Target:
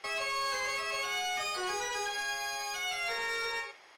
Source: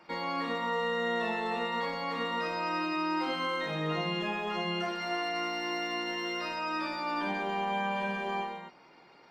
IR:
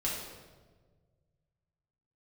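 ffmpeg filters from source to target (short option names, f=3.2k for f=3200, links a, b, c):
-af "adynamicsmooth=sensitivity=2:basefreq=3.1k,asoftclip=type=tanh:threshold=-30.5dB,aecho=1:1:130:0.211,asetrate=103194,aresample=44100,volume=1.5dB"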